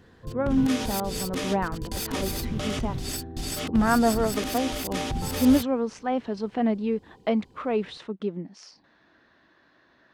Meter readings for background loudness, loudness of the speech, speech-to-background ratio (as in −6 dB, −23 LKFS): −31.5 LKFS, −27.5 LKFS, 4.0 dB